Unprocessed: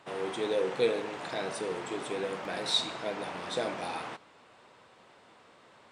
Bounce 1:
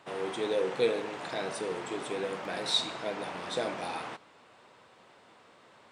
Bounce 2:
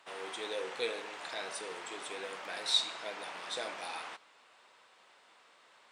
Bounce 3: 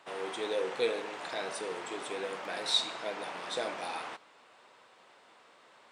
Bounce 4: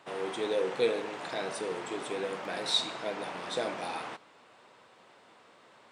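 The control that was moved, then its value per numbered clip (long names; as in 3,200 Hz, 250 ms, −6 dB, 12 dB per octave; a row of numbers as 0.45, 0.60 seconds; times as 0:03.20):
high-pass filter, corner frequency: 46, 1,400, 520, 160 Hertz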